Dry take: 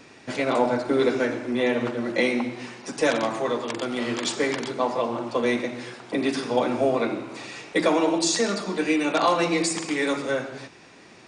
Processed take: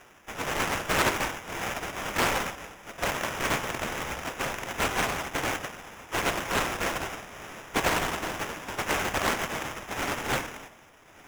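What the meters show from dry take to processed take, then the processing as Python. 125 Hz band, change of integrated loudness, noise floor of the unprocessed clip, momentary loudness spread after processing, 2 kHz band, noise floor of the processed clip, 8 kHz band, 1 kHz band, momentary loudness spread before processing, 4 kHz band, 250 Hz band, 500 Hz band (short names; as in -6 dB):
-0.5 dB, -4.5 dB, -49 dBFS, 11 LU, +0.5 dB, -54 dBFS, -2.0 dB, -2.0 dB, 11 LU, -2.0 dB, -11.5 dB, -10.0 dB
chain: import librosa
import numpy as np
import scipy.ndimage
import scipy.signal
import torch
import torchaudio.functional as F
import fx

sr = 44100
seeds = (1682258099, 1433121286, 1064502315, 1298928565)

y = fx.envelope_flatten(x, sr, power=0.1)
y = scipy.signal.sosfilt(scipy.signal.butter(2, 820.0, 'highpass', fs=sr, output='sos'), y)
y = fx.peak_eq(y, sr, hz=5000.0, db=5.5, octaves=0.24)
y = fx.rider(y, sr, range_db=5, speed_s=2.0)
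y = fx.rotary(y, sr, hz=0.75)
y = fx.sample_hold(y, sr, seeds[0], rate_hz=4300.0, jitter_pct=0)
y = y + 10.0 ** (-23.5 / 20.0) * np.pad(y, (int(1169 * sr / 1000.0), 0))[:len(y)]
y = fx.doppler_dist(y, sr, depth_ms=0.75)
y = y * librosa.db_to_amplitude(-3.0)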